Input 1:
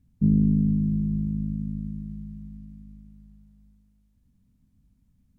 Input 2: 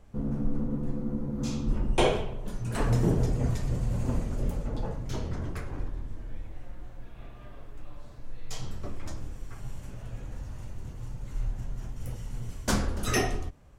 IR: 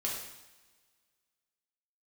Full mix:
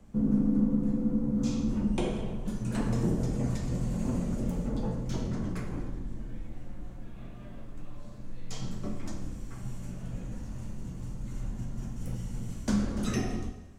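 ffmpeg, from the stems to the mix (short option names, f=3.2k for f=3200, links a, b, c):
-filter_complex "[0:a]highpass=f=280:w=0.5412,highpass=f=280:w=1.3066,volume=-5.5dB[a];[1:a]equalizer=f=7.5k:t=o:w=0.95:g=5,acrossover=split=91|330|6400[b][c][d][e];[b]acompressor=threshold=-32dB:ratio=4[f];[c]acompressor=threshold=-36dB:ratio=4[g];[d]acompressor=threshold=-36dB:ratio=4[h];[e]acompressor=threshold=-53dB:ratio=4[i];[f][g][h][i]amix=inputs=4:normalize=0,volume=-6.5dB,asplit=2[j][k];[k]volume=-4.5dB[l];[2:a]atrim=start_sample=2205[m];[l][m]afir=irnorm=-1:irlink=0[n];[a][j][n]amix=inputs=3:normalize=0,equalizer=f=200:w=0.99:g=10.5"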